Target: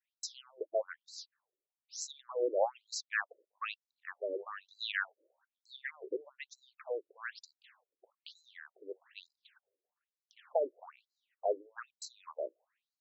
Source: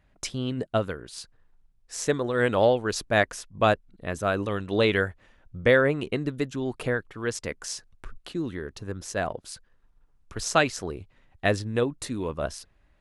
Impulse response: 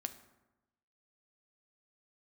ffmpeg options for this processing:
-af "agate=range=-33dB:threshold=-57dB:ratio=3:detection=peak,afftfilt=real='re*between(b*sr/1024,420*pow(5600/420,0.5+0.5*sin(2*PI*1.1*pts/sr))/1.41,420*pow(5600/420,0.5+0.5*sin(2*PI*1.1*pts/sr))*1.41)':imag='im*between(b*sr/1024,420*pow(5600/420,0.5+0.5*sin(2*PI*1.1*pts/sr))/1.41,420*pow(5600/420,0.5+0.5*sin(2*PI*1.1*pts/sr))*1.41)':win_size=1024:overlap=0.75,volume=-6dB"

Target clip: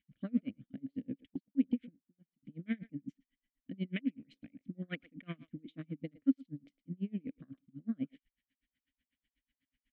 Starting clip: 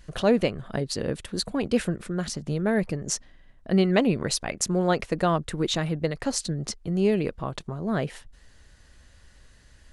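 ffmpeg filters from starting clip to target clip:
-filter_complex "[0:a]highshelf=f=4k:t=q:w=1.5:g=-8.5,afwtdn=0.0355,equalizer=f=390:w=2.6:g=-14.5,asplit=2[a][b];[b]adelay=110,highpass=300,lowpass=3.4k,asoftclip=type=hard:threshold=-19dB,volume=-18dB[c];[a][c]amix=inputs=2:normalize=0,asettb=1/sr,asplit=3[d][e][f];[d]atrim=end=3.994[g];[e]atrim=start=3.99:end=4.63,asetpts=PTS-STARTPTS,afade=t=in:d=0.004:c=qsin,afade=t=out:st=0.636:d=0.004:c=qsin,acrossover=split=1300|3000[h][i][j];[h]acompressor=threshold=-34dB:ratio=4[k];[i]acompressor=threshold=-50dB:ratio=4[l];[j]acompressor=threshold=-58dB:ratio=4[m];[k][l][m]amix=inputs=3:normalize=0[n];[f]atrim=start=4.626[o];[g][n]acrossfade=d=0.004:c1=hsin:c2=qsin[p];[p][o]acrossfade=d=0.004:c1=qsin:c2=hsin,asplit=3[q][r][s];[q]bandpass=f=270:t=q:w=8,volume=0dB[t];[r]bandpass=f=2.29k:t=q:w=8,volume=-6dB[u];[s]bandpass=f=3.01k:t=q:w=8,volume=-9dB[v];[t][u][v]amix=inputs=3:normalize=0,asettb=1/sr,asplit=3[w][x][y];[w]atrim=end=1.304[z];[x]atrim=start=1.3:end=2.43,asetpts=PTS-STARTPTS,afade=t=in:d=0.004:c=qsin,afade=t=out:st=1.126:d=0.004:c=qsin,agate=range=-28dB:threshold=-42dB:ratio=16:detection=peak[aa];[y]atrim=start=2.426[ab];[z][aa]acrossfade=d=0.004:c1=hsin:c2=qsin[ac];[ac][ab]acrossfade=d=0.004:c1=qsin:c2=hsin,aeval=exprs='val(0)*pow(10,-33*(0.5-0.5*cos(2*PI*8.1*n/s))/20)':c=same,volume=8dB"

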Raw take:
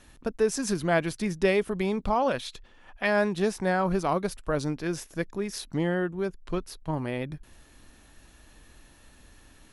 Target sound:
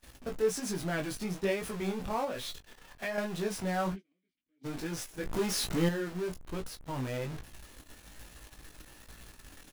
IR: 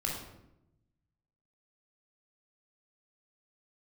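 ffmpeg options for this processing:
-filter_complex "[0:a]aeval=exprs='val(0)+0.5*0.0501*sgn(val(0))':c=same,asplit=3[a][b][c];[a]afade=t=out:st=3.92:d=0.02[d];[b]asplit=3[e][f][g];[e]bandpass=f=270:t=q:w=8,volume=0dB[h];[f]bandpass=f=2.29k:t=q:w=8,volume=-6dB[i];[g]bandpass=f=3.01k:t=q:w=8,volume=-9dB[j];[h][i][j]amix=inputs=3:normalize=0,afade=t=in:st=3.92:d=0.02,afade=t=out:st=4.63:d=0.02[k];[c]afade=t=in:st=4.63:d=0.02[l];[d][k][l]amix=inputs=3:normalize=0,flanger=delay=17.5:depth=5.5:speed=1.2,asettb=1/sr,asplit=3[m][n][o];[m]atrim=end=5.264[p];[n]atrim=start=5.26:end=5.89,asetpts=PTS-STARTPTS,afade=t=in:d=0.004:c=qsin,afade=t=out:st=0.626:d=0.004:c=qsin,acontrast=77[q];[o]atrim=start=5.886[r];[p][q]acrossfade=d=0.004:c1=hsin:c2=qsin[s];[s][r]acrossfade=d=0.004:c1=qsin:c2=hsin,agate=range=-30dB:threshold=-33dB:ratio=16:detection=peak,asplit=2[t][u];[u]adelay=16,volume=-9dB[v];[t][v]amix=inputs=2:normalize=0,asettb=1/sr,asplit=3[w][x][y];[w]atrim=end=2.244[z];[x]atrim=start=2.24:end=3.18,asetpts=PTS-STARTPTS,afade=t=in:d=0.004:c=qsin,afade=t=out:st=0.936:d=0.004:c=qsin,acompressor=threshold=-25dB:ratio=6[aa];[y]atrim=start=3.176[ab];[z][aa]acrossfade=d=0.004:c1=hsin:c2=qsin[ac];[ac][ab]acrossfade=d=0.004:c1=qsin:c2=hsin,volume=-7.5dB"

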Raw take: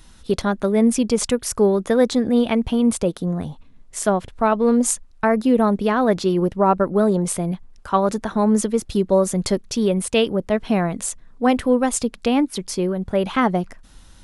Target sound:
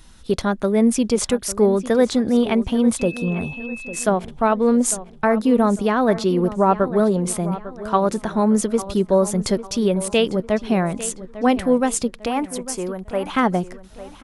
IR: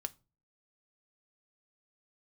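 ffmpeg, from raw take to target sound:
-filter_complex "[0:a]asettb=1/sr,asplit=3[a][b][c];[a]atrim=end=12.264[d];[b]atrim=start=12.26:end=13.3,asetpts=PTS-STARTPTS,afade=t=in:d=0.004:c=qsin,afade=t=out:st=1.036:d=0.004:c=qsin,equalizer=f=125:t=o:w=1:g=-10,equalizer=f=250:t=o:w=1:g=-6,equalizer=f=500:t=o:w=1:g=-3,equalizer=f=1k:t=o:w=1:g=4,equalizer=f=4k:t=o:w=1:g=-10,equalizer=f=8k:t=o:w=1:g=6[e];[c]atrim=start=13.296[f];[d][e]acrossfade=d=0.004:c1=hsin:c2=qsin[g];[g][f]acrossfade=d=0.004:c1=qsin:c2=hsin,asplit=2[h][i];[i]adelay=850,lowpass=f=4.9k:p=1,volume=-14.5dB,asplit=2[j][k];[k]adelay=850,lowpass=f=4.9k:p=1,volume=0.4,asplit=2[l][m];[m]adelay=850,lowpass=f=4.9k:p=1,volume=0.4,asplit=2[n][o];[o]adelay=850,lowpass=f=4.9k:p=1,volume=0.4[p];[h][j][l][n][p]amix=inputs=5:normalize=0,asettb=1/sr,asplit=3[q][r][s];[q]atrim=end=2.994[t];[r]atrim=start=2.99:end=4.04,asetpts=PTS-STARTPTS,afade=t=in:d=0.004:c=qsin,afade=t=out:st=1.046:d=0.004:c=qsin,aeval=exprs='val(0)+0.0224*sin(2*PI*2600*n/s)':c=same[u];[s]atrim=start=4.036[v];[t][u]acrossfade=d=0.004:c1=hsin:c2=qsin[w];[w][v]acrossfade=d=0.004:c1=qsin:c2=hsin"

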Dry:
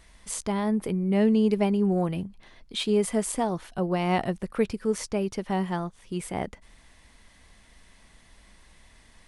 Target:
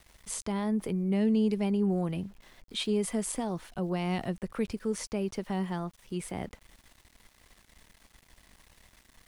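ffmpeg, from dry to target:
-filter_complex "[0:a]acrossover=split=310|2400[a][b][c];[b]alimiter=level_in=1dB:limit=-24dB:level=0:latency=1:release=81,volume=-1dB[d];[a][d][c]amix=inputs=3:normalize=0,acontrast=46,aeval=exprs='val(0)*gte(abs(val(0)),0.00501)':c=same,volume=-9dB"

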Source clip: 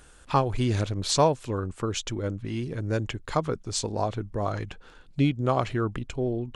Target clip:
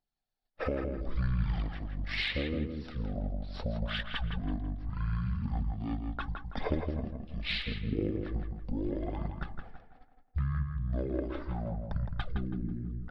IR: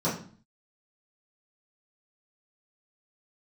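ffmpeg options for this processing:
-filter_complex "[0:a]agate=range=-41dB:threshold=-46dB:ratio=16:detection=peak,acompressor=threshold=-34dB:ratio=6,aphaser=in_gain=1:out_gain=1:delay=2:decay=0.4:speed=1.5:type=triangular,asplit=2[a][b];[b]adelay=82,lowpass=f=4.9k:p=1,volume=-5dB,asplit=2[c][d];[d]adelay=82,lowpass=f=4.9k:p=1,volume=0.36,asplit=2[e][f];[f]adelay=82,lowpass=f=4.9k:p=1,volume=0.36,asplit=2[g][h];[h]adelay=82,lowpass=f=4.9k:p=1,volume=0.36[i];[a][c][e][g][i]amix=inputs=5:normalize=0,asetrate=22050,aresample=44100,volume=1.5dB"

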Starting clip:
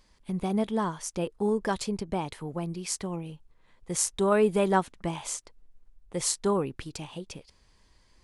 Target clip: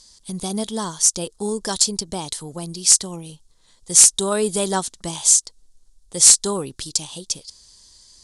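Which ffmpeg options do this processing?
-af "aexciter=amount=7.9:drive=7.3:freq=3.6k,acontrast=21,lowpass=f=10k:w=0.5412,lowpass=f=10k:w=1.3066,volume=-3.5dB"

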